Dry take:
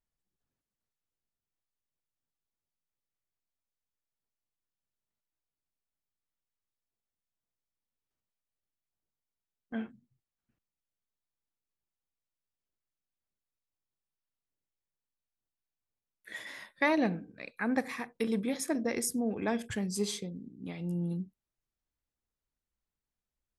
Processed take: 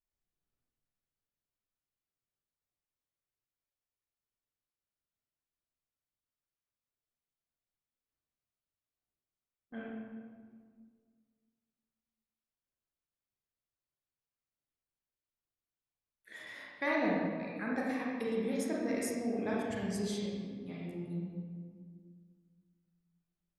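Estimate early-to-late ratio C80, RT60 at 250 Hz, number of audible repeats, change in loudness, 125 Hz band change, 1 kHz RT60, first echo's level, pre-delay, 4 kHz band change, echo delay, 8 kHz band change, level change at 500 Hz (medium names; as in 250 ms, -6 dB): 1.0 dB, 2.4 s, no echo, -3.0 dB, -3.5 dB, 1.7 s, no echo, 29 ms, -5.5 dB, no echo, -8.0 dB, -1.0 dB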